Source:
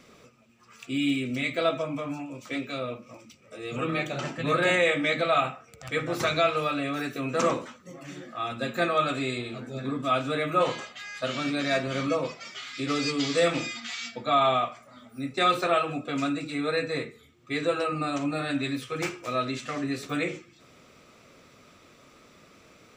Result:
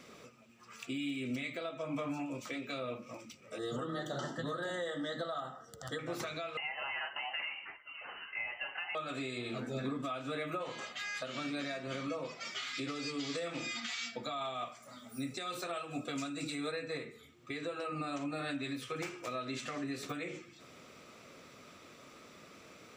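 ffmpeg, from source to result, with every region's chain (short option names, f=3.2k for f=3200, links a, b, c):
-filter_complex "[0:a]asettb=1/sr,asplit=3[a][b][c];[a]atrim=end=3.584[d];[b]atrim=start=3.58:end=5.99,asetpts=PTS-STARTPTS,afade=t=in:d=0.004:c=qsin,afade=t=out:st=2.406:d=0.004:c=qsin,asuperstop=centerf=2400:order=8:qfactor=2.3,asoftclip=type=hard:threshold=-14dB[e];[c]atrim=start=5.986[f];[d][e]acrossfade=d=0.004:c1=hsin:c2=qsin[g];[g][f]acrossfade=d=0.004:c1=qsin:c2=hsin,asettb=1/sr,asplit=3[h][i][j];[h]atrim=end=6.574[k];[i]atrim=start=6.57:end=8.95,asetpts=PTS-STARTPTS,afade=t=in:d=0.004:c=qsin,afade=t=out:st=2.376:d=0.004:c=qsin,highpass=f=400:w=0.5412,highpass=f=400:w=1.3066,aemphasis=mode=production:type=bsi,lowpass=f=2.8k:t=q:w=0.5098,lowpass=f=2.8k:t=q:w=0.6013,lowpass=f=2.8k:t=q:w=0.9,lowpass=f=2.8k:t=q:w=2.563,afreqshift=-3300[l];[j]atrim=start=8.946[m];[k][l]acrossfade=d=0.004:c1=hsin:c2=qsin[n];[n][m]acrossfade=d=0.004:c1=qsin:c2=hsin,asettb=1/sr,asplit=3[o][p][q];[o]atrim=end=14.234[r];[p]atrim=start=14.23:end=16.72,asetpts=PTS-STARTPTS,afade=t=in:d=0.004:c=qsin,afade=t=out:st=2.486:d=0.004:c=qsin,highpass=46,bass=f=250:g=2,treble=f=4k:g=10,tremolo=f=4.5:d=0.4[s];[q]atrim=start=16.716[t];[r][s]acrossfade=d=0.004:c1=hsin:c2=qsin[u];[u][t]acrossfade=d=0.004:c1=qsin:c2=hsin,lowshelf=f=70:g=-12,acompressor=threshold=-32dB:ratio=12,alimiter=level_in=4.5dB:limit=-24dB:level=0:latency=1:release=329,volume=-4.5dB"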